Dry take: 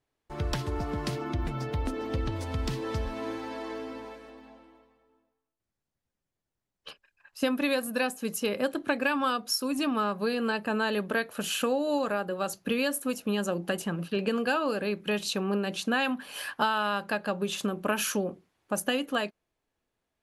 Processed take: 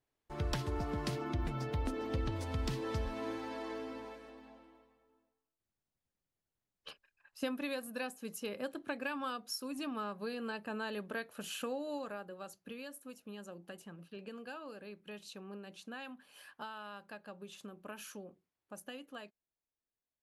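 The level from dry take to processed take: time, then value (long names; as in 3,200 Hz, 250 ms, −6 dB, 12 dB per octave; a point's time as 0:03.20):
0:06.89 −5 dB
0:07.68 −11.5 dB
0:11.80 −11.5 dB
0:12.81 −19 dB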